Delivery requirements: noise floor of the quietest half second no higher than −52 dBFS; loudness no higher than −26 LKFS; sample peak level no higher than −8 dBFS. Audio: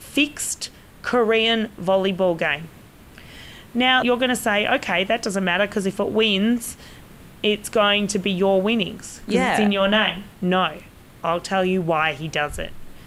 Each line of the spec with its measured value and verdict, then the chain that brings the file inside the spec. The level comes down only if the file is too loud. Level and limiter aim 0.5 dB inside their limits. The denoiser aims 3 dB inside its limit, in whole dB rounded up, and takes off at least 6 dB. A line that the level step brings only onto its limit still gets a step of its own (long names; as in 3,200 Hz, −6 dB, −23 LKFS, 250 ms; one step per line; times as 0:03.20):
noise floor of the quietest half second −45 dBFS: out of spec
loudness −20.5 LKFS: out of spec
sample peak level −5.5 dBFS: out of spec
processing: broadband denoise 6 dB, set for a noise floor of −45 dBFS
level −6 dB